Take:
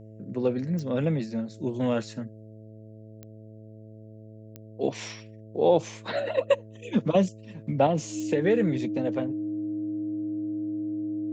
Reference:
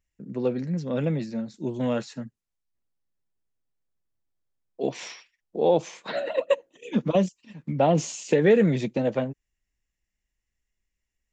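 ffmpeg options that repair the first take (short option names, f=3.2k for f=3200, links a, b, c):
-af "adeclick=t=4,bandreject=f=108.8:t=h:w=4,bandreject=f=217.6:t=h:w=4,bandreject=f=326.4:t=h:w=4,bandreject=f=435.2:t=h:w=4,bandreject=f=544:t=h:w=4,bandreject=f=652.8:t=h:w=4,bandreject=f=310:w=30,asetnsamples=n=441:p=0,asendcmd='7.87 volume volume 5dB',volume=0dB"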